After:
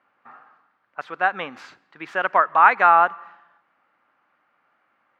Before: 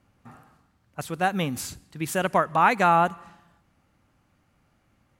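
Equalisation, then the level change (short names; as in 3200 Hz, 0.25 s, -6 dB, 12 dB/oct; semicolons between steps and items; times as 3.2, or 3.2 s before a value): HPF 360 Hz 12 dB/oct; air absorption 230 m; bell 1400 Hz +14.5 dB 2.1 oct; -5.0 dB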